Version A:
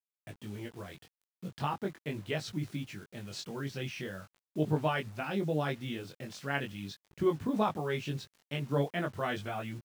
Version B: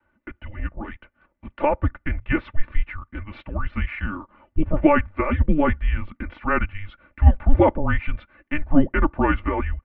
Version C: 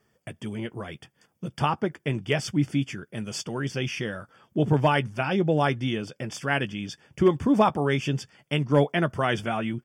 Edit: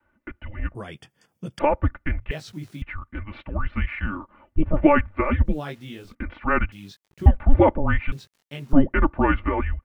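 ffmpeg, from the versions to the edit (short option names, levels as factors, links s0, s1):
-filter_complex "[0:a]asplit=4[s0][s1][s2][s3];[1:a]asplit=6[s4][s5][s6][s7][s8][s9];[s4]atrim=end=0.752[s10];[2:a]atrim=start=0.748:end=1.592[s11];[s5]atrim=start=1.588:end=2.312[s12];[s0]atrim=start=2.308:end=2.822[s13];[s6]atrim=start=2.818:end=5.6[s14];[s1]atrim=start=5.44:end=6.2[s15];[s7]atrim=start=6.04:end=6.722[s16];[s2]atrim=start=6.718:end=7.262[s17];[s8]atrim=start=7.258:end=8.122[s18];[s3]atrim=start=8.118:end=8.732[s19];[s9]atrim=start=8.728[s20];[s10][s11]acrossfade=d=0.004:c1=hsin:c2=hsin[s21];[s21][s12]acrossfade=d=0.004:c1=hsin:c2=hsin[s22];[s22][s13]acrossfade=d=0.004:c1=hsin:c2=hsin[s23];[s23][s14]acrossfade=d=0.004:c1=hsin:c2=hsin[s24];[s24][s15]acrossfade=d=0.16:c1=tri:c2=tri[s25];[s25][s16]acrossfade=d=0.16:c1=tri:c2=tri[s26];[s26][s17]acrossfade=d=0.004:c1=hsin:c2=hsin[s27];[s27][s18]acrossfade=d=0.004:c1=hsin:c2=hsin[s28];[s28][s19]acrossfade=d=0.004:c1=hsin:c2=hsin[s29];[s29][s20]acrossfade=d=0.004:c1=hsin:c2=hsin"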